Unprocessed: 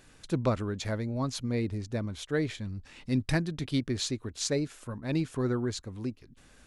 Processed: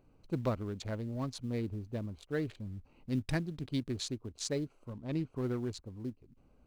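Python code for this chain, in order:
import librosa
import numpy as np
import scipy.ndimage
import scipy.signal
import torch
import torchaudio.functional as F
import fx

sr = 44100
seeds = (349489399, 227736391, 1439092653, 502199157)

p1 = fx.wiener(x, sr, points=25)
p2 = fx.quant_float(p1, sr, bits=2)
p3 = p1 + (p2 * librosa.db_to_amplitude(-10.5))
p4 = fx.high_shelf(p3, sr, hz=6700.0, db=-9.5, at=(4.93, 5.36))
y = p4 * librosa.db_to_amplitude(-7.5)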